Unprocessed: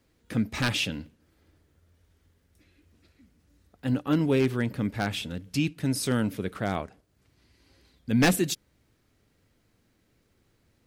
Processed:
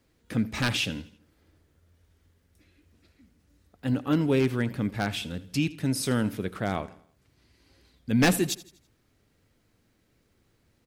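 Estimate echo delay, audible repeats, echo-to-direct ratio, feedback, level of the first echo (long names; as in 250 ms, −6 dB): 82 ms, 3, −17.5 dB, 44%, −18.5 dB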